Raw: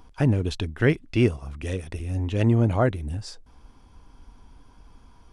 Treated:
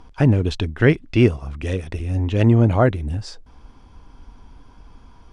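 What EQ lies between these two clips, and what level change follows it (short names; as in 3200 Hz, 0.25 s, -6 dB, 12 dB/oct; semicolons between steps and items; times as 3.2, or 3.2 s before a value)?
air absorption 56 m; +5.5 dB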